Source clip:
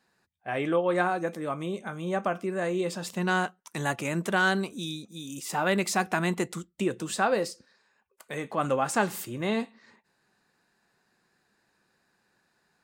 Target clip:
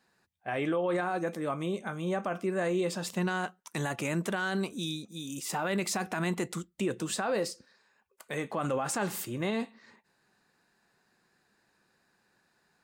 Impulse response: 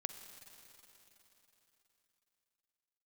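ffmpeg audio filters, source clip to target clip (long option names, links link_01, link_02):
-af "alimiter=limit=-22dB:level=0:latency=1:release=36"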